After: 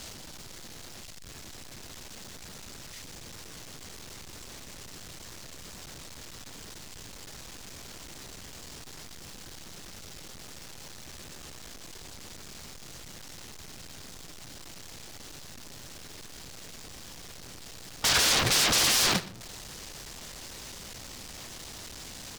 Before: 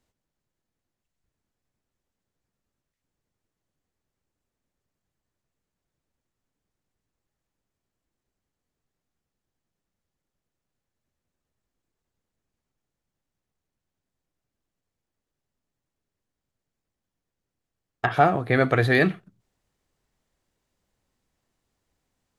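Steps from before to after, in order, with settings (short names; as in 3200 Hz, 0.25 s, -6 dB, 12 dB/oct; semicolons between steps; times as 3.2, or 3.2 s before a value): zero-crossing step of -23 dBFS; sample leveller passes 3; gate -12 dBFS, range -41 dB; sine folder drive 12 dB, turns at -21 dBFS; bell 5000 Hz +8.5 dB 1.8 oct; on a send: echo 0.121 s -19.5 dB; on the sum: gain -3.5 dB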